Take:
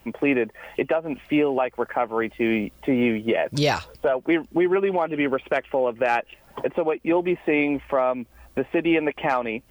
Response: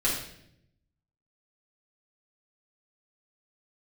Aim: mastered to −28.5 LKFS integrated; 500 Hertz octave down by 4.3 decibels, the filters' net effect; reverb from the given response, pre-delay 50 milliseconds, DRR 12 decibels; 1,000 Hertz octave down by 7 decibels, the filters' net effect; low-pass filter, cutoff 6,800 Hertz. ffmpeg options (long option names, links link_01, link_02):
-filter_complex "[0:a]lowpass=6800,equalizer=frequency=500:width_type=o:gain=-3.5,equalizer=frequency=1000:width_type=o:gain=-8.5,asplit=2[link_01][link_02];[1:a]atrim=start_sample=2205,adelay=50[link_03];[link_02][link_03]afir=irnorm=-1:irlink=0,volume=-22dB[link_04];[link_01][link_04]amix=inputs=2:normalize=0,volume=-2dB"